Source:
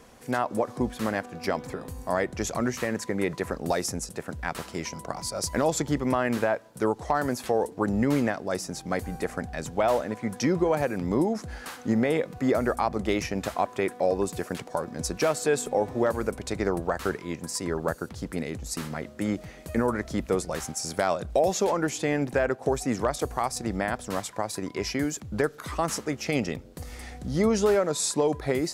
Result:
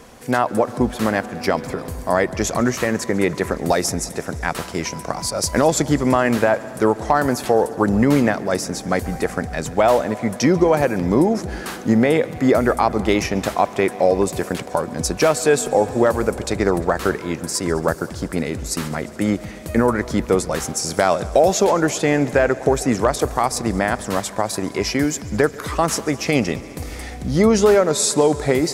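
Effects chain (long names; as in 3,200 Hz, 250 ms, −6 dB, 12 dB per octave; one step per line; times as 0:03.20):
echo machine with several playback heads 70 ms, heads second and third, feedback 75%, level −22 dB
level +8.5 dB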